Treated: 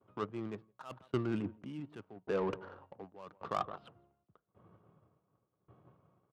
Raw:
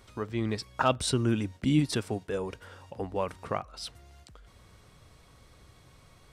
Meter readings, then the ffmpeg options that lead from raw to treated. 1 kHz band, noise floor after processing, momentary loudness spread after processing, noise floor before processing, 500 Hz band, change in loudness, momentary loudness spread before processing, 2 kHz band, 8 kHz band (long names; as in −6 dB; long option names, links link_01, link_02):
−7.5 dB, −83 dBFS, 16 LU, −58 dBFS, −6.5 dB, −9.5 dB, 14 LU, −11.0 dB, below −25 dB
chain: -filter_complex "[0:a]highpass=frequency=130:width=0.5412,highpass=frequency=130:width=1.3066,equalizer=frequency=140:width_type=q:width=4:gain=-5,equalizer=frequency=250:width_type=q:width=4:gain=-7,equalizer=frequency=490:width_type=q:width=4:gain=-3,equalizer=frequency=1200:width_type=q:width=4:gain=5,equalizer=frequency=2000:width_type=q:width=4:gain=-7,equalizer=frequency=3000:width_type=q:width=4:gain=5,lowpass=frequency=3300:width=0.5412,lowpass=frequency=3300:width=1.3066,asplit=2[link_01][link_02];[link_02]aecho=0:1:167:0.0944[link_03];[link_01][link_03]amix=inputs=2:normalize=0,adynamicsmooth=sensitivity=4.5:basefreq=660,agate=range=-33dB:threshold=-58dB:ratio=3:detection=peak,areverse,acompressor=threshold=-41dB:ratio=10,areverse,aeval=exprs='val(0)*pow(10,-23*if(lt(mod(0.88*n/s,1),2*abs(0.88)/1000),1-mod(0.88*n/s,1)/(2*abs(0.88)/1000),(mod(0.88*n/s,1)-2*abs(0.88)/1000)/(1-2*abs(0.88)/1000))/20)':channel_layout=same,volume=13dB"